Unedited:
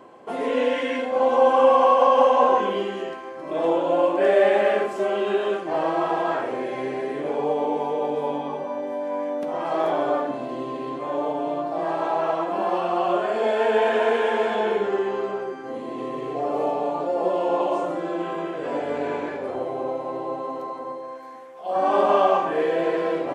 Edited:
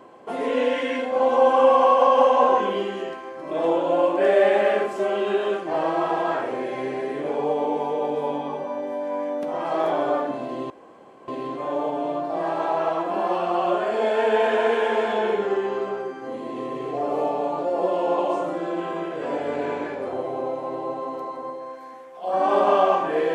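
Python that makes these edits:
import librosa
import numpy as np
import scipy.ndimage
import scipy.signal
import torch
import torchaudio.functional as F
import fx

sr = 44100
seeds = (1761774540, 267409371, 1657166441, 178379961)

y = fx.edit(x, sr, fx.insert_room_tone(at_s=10.7, length_s=0.58), tone=tone)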